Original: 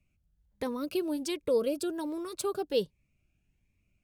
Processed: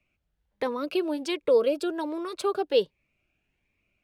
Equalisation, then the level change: three-band isolator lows -14 dB, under 330 Hz, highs -19 dB, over 3.8 kHz; peaking EQ 9.2 kHz +4.5 dB 2 oct; +7.5 dB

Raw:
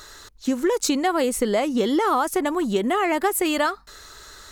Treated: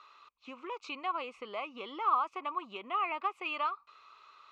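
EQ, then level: two resonant band-passes 1.7 kHz, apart 1.1 oct; distance through air 160 m; 0.0 dB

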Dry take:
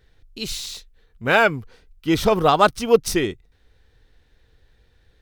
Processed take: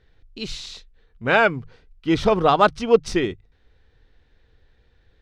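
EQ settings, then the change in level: distance through air 110 m; hum notches 50/100/150 Hz; 0.0 dB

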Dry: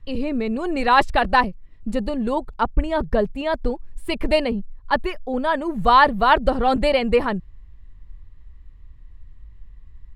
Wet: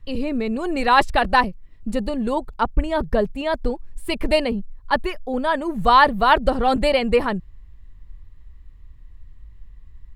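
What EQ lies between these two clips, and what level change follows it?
treble shelf 6.4 kHz +6.5 dB; 0.0 dB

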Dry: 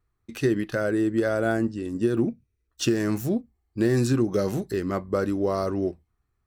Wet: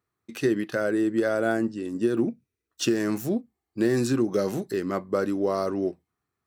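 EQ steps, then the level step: high-pass 170 Hz 12 dB/octave; 0.0 dB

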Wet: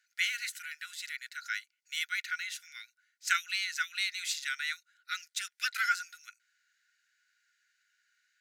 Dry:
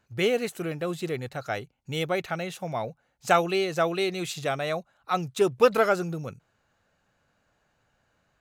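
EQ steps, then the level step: rippled Chebyshev high-pass 1.4 kHz, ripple 6 dB; +4.0 dB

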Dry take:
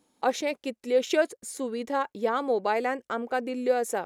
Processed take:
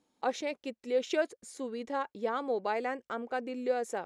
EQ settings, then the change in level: low-pass 7.4 kHz 12 dB/octave; -6.0 dB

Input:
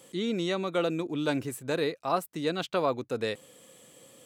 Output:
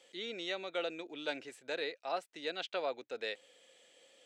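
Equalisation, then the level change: high-pass 740 Hz 12 dB/octave; distance through air 130 m; peaking EQ 1.1 kHz -14 dB 0.63 oct; 0.0 dB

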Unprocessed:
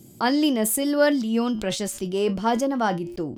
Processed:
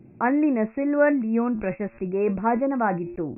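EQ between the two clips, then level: brick-wall FIR low-pass 2.7 kHz; 0.0 dB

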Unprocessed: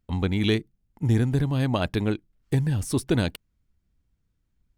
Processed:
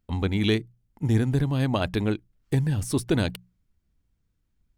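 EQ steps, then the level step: hum notches 60/120/180 Hz; 0.0 dB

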